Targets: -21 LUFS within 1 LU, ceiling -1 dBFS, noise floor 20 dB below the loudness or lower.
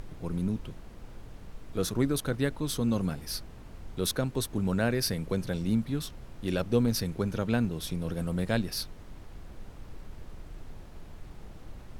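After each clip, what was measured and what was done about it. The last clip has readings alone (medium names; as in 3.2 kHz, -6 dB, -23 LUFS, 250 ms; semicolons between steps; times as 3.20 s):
noise floor -47 dBFS; noise floor target -51 dBFS; loudness -31.0 LUFS; peak level -13.0 dBFS; loudness target -21.0 LUFS
-> noise print and reduce 6 dB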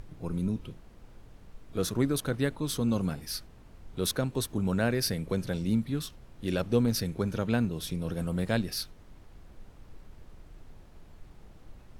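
noise floor -53 dBFS; loudness -31.0 LUFS; peak level -13.0 dBFS; loudness target -21.0 LUFS
-> trim +10 dB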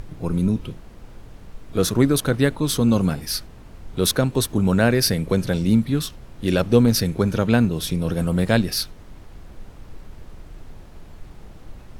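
loudness -21.0 LUFS; peak level -3.0 dBFS; noise floor -43 dBFS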